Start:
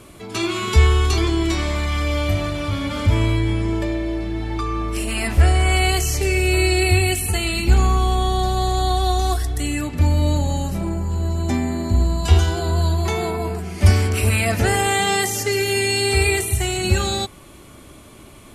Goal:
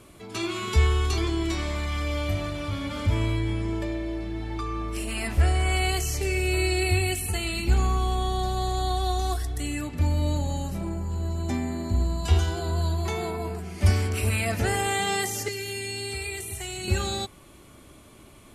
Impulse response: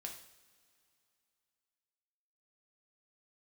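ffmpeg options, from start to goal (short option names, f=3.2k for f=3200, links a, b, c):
-filter_complex "[0:a]asettb=1/sr,asplit=3[a][b][c];[a]atrim=end=15.484[d];[b]atrim=start=15.48:end=16.88,asetpts=PTS-STARTPTS,afade=t=in:d=0.004:c=qsin,afade=t=out:st=1.396:d=0.004:c=qsin,acrossover=split=320|2000[e][f][g];[e]acompressor=threshold=-31dB:ratio=4[h];[f]acompressor=threshold=-34dB:ratio=4[i];[g]acompressor=threshold=-27dB:ratio=4[j];[h][i][j]amix=inputs=3:normalize=0[k];[c]atrim=start=16.876[l];[d][k]acrossfade=d=0.004:c1=hsin:c2=qsin[m];[m][l]acrossfade=d=0.004:c1=qsin:c2=hsin,volume=-7dB"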